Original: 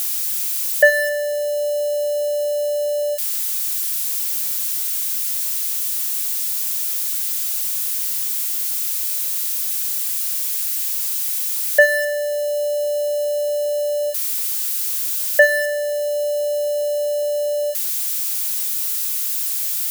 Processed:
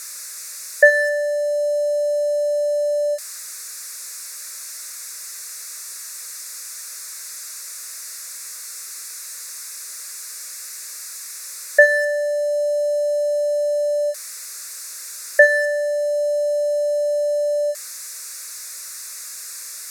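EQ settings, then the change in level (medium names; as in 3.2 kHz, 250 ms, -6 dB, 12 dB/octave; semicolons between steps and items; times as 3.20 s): low-pass 6.9 kHz 12 dB/octave; static phaser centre 840 Hz, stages 6; +2.0 dB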